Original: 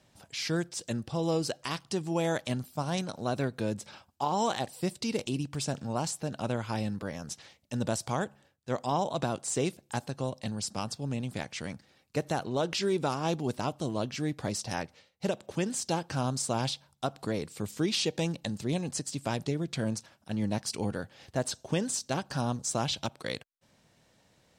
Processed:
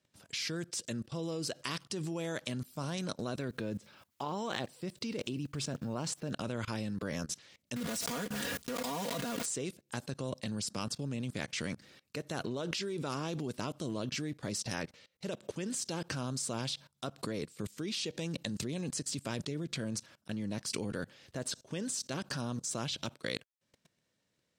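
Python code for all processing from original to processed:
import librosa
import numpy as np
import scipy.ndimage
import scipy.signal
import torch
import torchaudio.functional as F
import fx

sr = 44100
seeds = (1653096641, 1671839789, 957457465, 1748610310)

y = fx.chain(x, sr, fx.lowpass(hz=3100.0, slope=6),
    fx.quant_dither(seeds[0], bits=12, dither='triangular'), at=(3.48, 6.31))
y = fx.chain(y, sr, fx.block_float(bits=3),
    fx.comb(ms=4.2, depth=0.91),
    fx.pre_swell(db_per_s=41.0), at=(7.76, 9.46))
y = fx.highpass(y, sr, hz=120.0, slope=6)
y = fx.peak_eq(y, sr, hz=790.0, db=-9.0, octaves=0.58)
y = fx.level_steps(y, sr, step_db=22)
y = F.gain(torch.from_numpy(y), 7.5).numpy()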